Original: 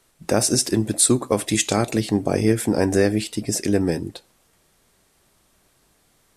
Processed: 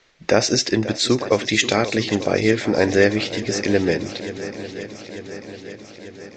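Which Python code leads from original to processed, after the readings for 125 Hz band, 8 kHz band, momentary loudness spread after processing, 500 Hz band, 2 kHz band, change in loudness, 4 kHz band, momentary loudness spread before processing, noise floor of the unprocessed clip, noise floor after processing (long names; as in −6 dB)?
−1.5 dB, −5.5 dB, 18 LU, +3.5 dB, +8.5 dB, +0.5 dB, +5.0 dB, 7 LU, −62 dBFS, −43 dBFS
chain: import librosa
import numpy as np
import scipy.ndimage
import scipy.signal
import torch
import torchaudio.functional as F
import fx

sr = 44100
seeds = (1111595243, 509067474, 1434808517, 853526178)

p1 = scipy.signal.sosfilt(scipy.signal.butter(12, 7000.0, 'lowpass', fs=sr, output='sos'), x)
p2 = fx.rider(p1, sr, range_db=10, speed_s=2.0)
p3 = fx.graphic_eq(p2, sr, hz=(500, 2000, 4000), db=(6, 11, 6))
p4 = p3 + fx.echo_swing(p3, sr, ms=893, ratio=1.5, feedback_pct=61, wet_db=-14.0, dry=0)
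y = p4 * 10.0 ** (-2.5 / 20.0)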